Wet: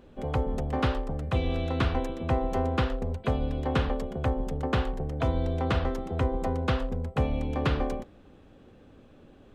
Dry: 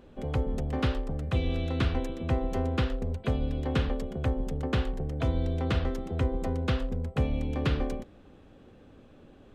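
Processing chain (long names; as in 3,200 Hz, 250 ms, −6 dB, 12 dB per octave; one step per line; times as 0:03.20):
dynamic equaliser 900 Hz, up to +7 dB, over −47 dBFS, Q 0.92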